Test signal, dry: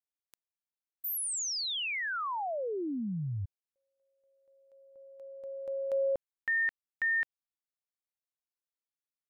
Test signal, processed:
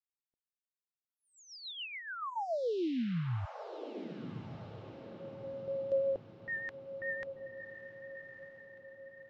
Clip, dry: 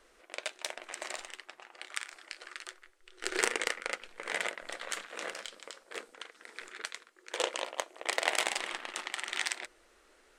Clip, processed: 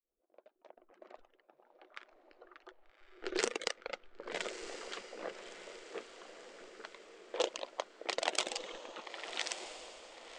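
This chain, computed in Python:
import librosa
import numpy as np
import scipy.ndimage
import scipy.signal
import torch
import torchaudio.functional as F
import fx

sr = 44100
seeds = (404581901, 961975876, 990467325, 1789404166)

y = fx.fade_in_head(x, sr, length_s=2.39)
y = fx.env_lowpass(y, sr, base_hz=790.0, full_db=-28.0)
y = fx.dereverb_blind(y, sr, rt60_s=1.7)
y = scipy.signal.sosfilt(scipy.signal.butter(4, 7200.0, 'lowpass', fs=sr, output='sos'), y)
y = fx.peak_eq(y, sr, hz=1900.0, db=-9.5, octaves=1.2)
y = fx.rotary(y, sr, hz=7.0)
y = fx.echo_diffused(y, sr, ms=1199, feedback_pct=47, wet_db=-9.5)
y = y * librosa.db_to_amplitude(3.5)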